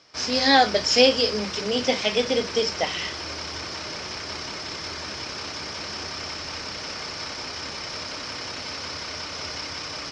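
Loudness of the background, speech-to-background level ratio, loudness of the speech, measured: -31.5 LUFS, 10.0 dB, -21.5 LUFS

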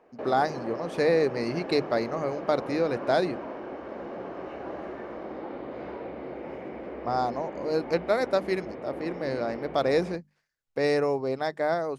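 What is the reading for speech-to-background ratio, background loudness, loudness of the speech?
10.0 dB, -38.0 LUFS, -28.0 LUFS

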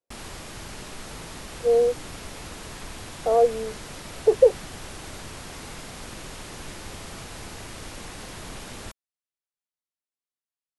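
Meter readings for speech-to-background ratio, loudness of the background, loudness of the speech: 16.5 dB, -38.5 LUFS, -22.0 LUFS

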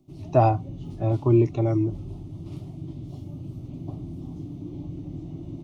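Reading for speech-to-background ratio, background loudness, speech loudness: 14.5 dB, -37.5 LUFS, -23.0 LUFS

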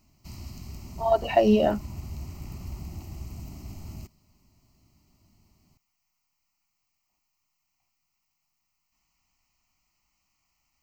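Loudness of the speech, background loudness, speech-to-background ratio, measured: -23.0 LUFS, -41.0 LUFS, 18.0 dB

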